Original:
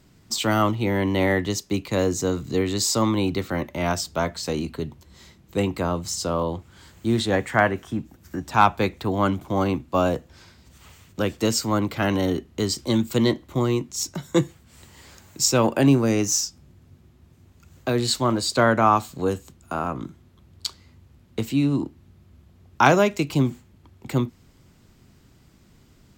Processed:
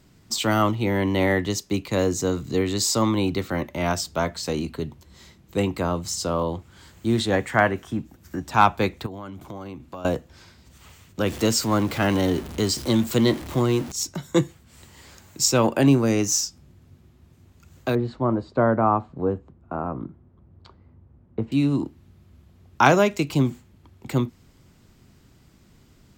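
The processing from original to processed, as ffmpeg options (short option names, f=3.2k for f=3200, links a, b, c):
-filter_complex "[0:a]asettb=1/sr,asplit=3[a][b][c];[a]atrim=end=9.064[d];[b]atrim=start=9.06:end=10.05,asetpts=PTS-STARTPTS,afade=t=in:d=0.004:c=qsin,afade=t=out:st=0.986:d=0.004:c=qsin,acompressor=threshold=-33dB:ratio=8:attack=3.2:release=140:knee=1:detection=peak[e];[c]atrim=start=10.046[f];[d][e]acrossfade=d=0.004:c1=hsin:c2=qsin[g];[g][f]acrossfade=d=0.004:c1=qsin:c2=hsin,asettb=1/sr,asplit=3[h][i][j];[h]atrim=end=11.264[k];[i]atrim=start=11.26:end=13.92,asetpts=PTS-STARTPTS,afade=t=in:d=0.004:c=qsin,afade=t=out:st=2.656:d=0.004:c=qsin,aeval=exprs='val(0)+0.5*0.0266*sgn(val(0))':c=same[l];[j]atrim=start=13.916[m];[k][l]acrossfade=d=0.004:c1=hsin:c2=qsin[n];[n][m]acrossfade=d=0.004:c1=qsin:c2=hsin,asettb=1/sr,asplit=3[o][p][q];[o]atrim=end=17.954[r];[p]atrim=start=17.95:end=21.52,asetpts=PTS-STARTPTS,afade=t=in:d=0.004:c=qsin,afade=t=out:st=3.566:d=0.004:c=qsin,lowpass=1k[s];[q]atrim=start=21.516[t];[r][s]acrossfade=d=0.004:c1=hsin:c2=qsin[u];[u][t]acrossfade=d=0.004:c1=qsin:c2=hsin"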